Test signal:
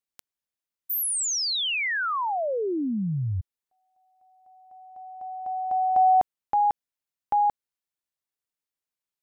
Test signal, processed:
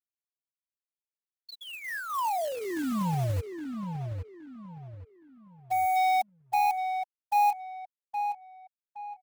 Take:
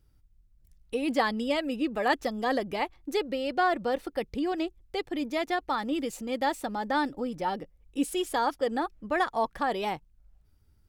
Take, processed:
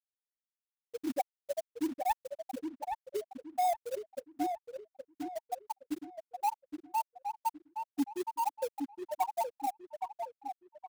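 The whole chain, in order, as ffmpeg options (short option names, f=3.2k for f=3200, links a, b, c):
-filter_complex "[0:a]afftfilt=real='re*gte(hypot(re,im),0.501)':imag='im*gte(hypot(re,im),0.501)':win_size=1024:overlap=0.75,aecho=1:1:1.1:0.5,acrossover=split=710|1400[a][b][c];[c]acompressor=threshold=-40dB:ratio=20:attack=0.28:release=810:knee=1:detection=peak[d];[a][b][d]amix=inputs=3:normalize=0,acrusher=bits=3:mode=log:mix=0:aa=0.000001,asoftclip=type=tanh:threshold=-22.5dB,asplit=2[e][f];[f]adelay=818,lowpass=f=2.5k:p=1,volume=-6dB,asplit=2[g][h];[h]adelay=818,lowpass=f=2.5k:p=1,volume=0.34,asplit=2[i][j];[j]adelay=818,lowpass=f=2.5k:p=1,volume=0.34,asplit=2[k][l];[l]adelay=818,lowpass=f=2.5k:p=1,volume=0.34[m];[g][i][k][m]amix=inputs=4:normalize=0[n];[e][n]amix=inputs=2:normalize=0,adynamicequalizer=threshold=0.002:dfrequency=6200:dqfactor=0.7:tfrequency=6200:tqfactor=0.7:attack=5:release=100:ratio=0.375:range=2.5:mode=boostabove:tftype=highshelf"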